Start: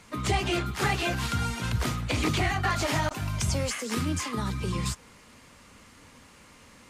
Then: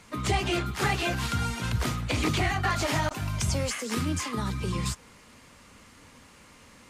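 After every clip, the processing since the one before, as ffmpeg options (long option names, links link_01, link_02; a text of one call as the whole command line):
ffmpeg -i in.wav -af anull out.wav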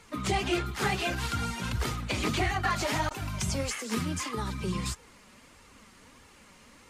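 ffmpeg -i in.wav -af "flanger=delay=2.2:depth=3.2:regen=37:speed=1.6:shape=sinusoidal,volume=2dB" out.wav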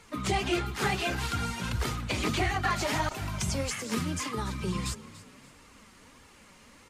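ffmpeg -i in.wav -filter_complex "[0:a]asplit=4[link_01][link_02][link_03][link_04];[link_02]adelay=288,afreqshift=36,volume=-17dB[link_05];[link_03]adelay=576,afreqshift=72,volume=-25.9dB[link_06];[link_04]adelay=864,afreqshift=108,volume=-34.7dB[link_07];[link_01][link_05][link_06][link_07]amix=inputs=4:normalize=0" out.wav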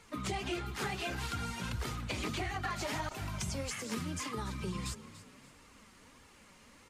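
ffmpeg -i in.wav -af "acompressor=threshold=-30dB:ratio=3,volume=-4dB" out.wav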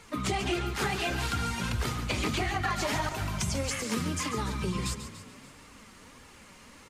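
ffmpeg -i in.wav -af "aecho=1:1:141:0.299,volume=6.5dB" out.wav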